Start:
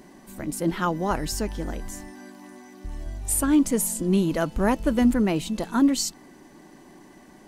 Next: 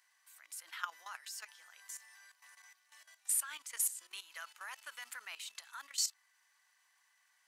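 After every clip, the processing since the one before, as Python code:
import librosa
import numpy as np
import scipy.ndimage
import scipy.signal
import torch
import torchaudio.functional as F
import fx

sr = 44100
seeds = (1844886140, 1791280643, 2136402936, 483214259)

y = scipy.signal.sosfilt(scipy.signal.butter(4, 1300.0, 'highpass', fs=sr, output='sos'), x)
y = fx.level_steps(y, sr, step_db=14)
y = F.gain(torch.from_numpy(y), -3.5).numpy()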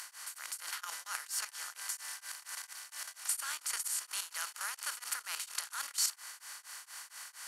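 y = fx.bin_compress(x, sr, power=0.4)
y = y * np.abs(np.cos(np.pi * 4.3 * np.arange(len(y)) / sr))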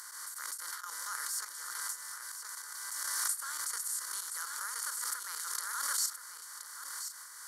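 y = fx.fixed_phaser(x, sr, hz=710.0, stages=6)
y = y + 10.0 ** (-9.0 / 20.0) * np.pad(y, (int(1024 * sr / 1000.0), 0))[:len(y)]
y = fx.pre_swell(y, sr, db_per_s=23.0)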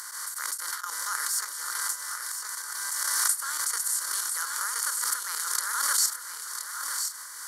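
y = fx.transient(x, sr, attack_db=3, sustain_db=-1)
y = y + 10.0 ** (-10.0 / 20.0) * np.pad(y, (int(1000 * sr / 1000.0), 0))[:len(y)]
y = F.gain(torch.from_numpy(y), 7.5).numpy()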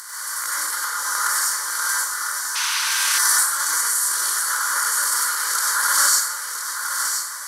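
y = fx.rev_plate(x, sr, seeds[0], rt60_s=1.1, hf_ratio=0.55, predelay_ms=80, drr_db=-6.5)
y = fx.spec_paint(y, sr, seeds[1], shape='noise', start_s=2.55, length_s=0.64, low_hz=880.0, high_hz=6500.0, level_db=-27.0)
y = F.gain(torch.from_numpy(y), 2.5).numpy()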